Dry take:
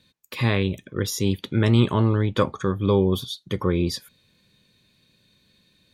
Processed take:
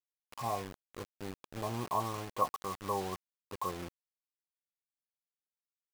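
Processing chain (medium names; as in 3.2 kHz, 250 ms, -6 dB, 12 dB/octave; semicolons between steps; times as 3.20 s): cascade formant filter a; word length cut 8-bit, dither none; trim +5 dB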